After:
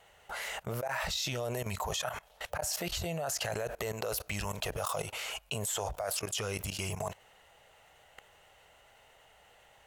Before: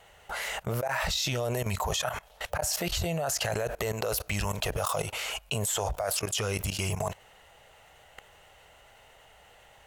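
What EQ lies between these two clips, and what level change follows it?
low shelf 110 Hz -4.5 dB; -4.5 dB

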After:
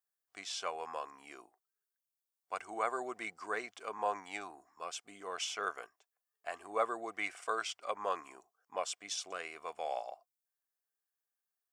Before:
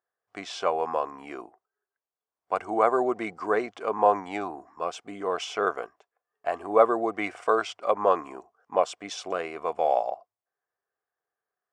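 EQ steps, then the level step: dynamic EQ 1800 Hz, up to +4 dB, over -40 dBFS, Q 1; pre-emphasis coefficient 0.9; +2.0 dB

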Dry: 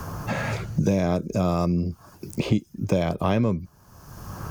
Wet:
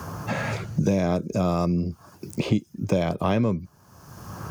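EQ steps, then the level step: HPF 83 Hz; bell 16000 Hz -4.5 dB 0.54 oct; 0.0 dB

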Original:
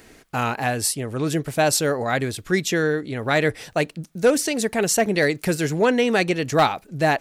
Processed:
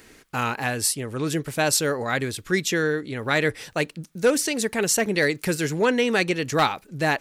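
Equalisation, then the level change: low shelf 400 Hz -3.5 dB; bell 690 Hz -6.5 dB 0.41 oct; 0.0 dB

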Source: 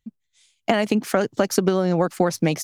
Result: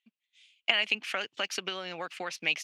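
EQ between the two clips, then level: band-pass 2700 Hz, Q 4; +7.5 dB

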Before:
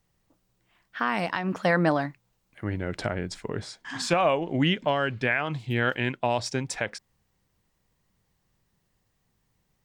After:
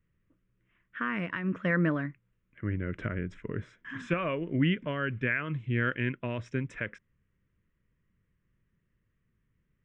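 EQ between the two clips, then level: tape spacing loss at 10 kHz 38 dB; high shelf 2100 Hz +8.5 dB; fixed phaser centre 1900 Hz, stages 4; 0.0 dB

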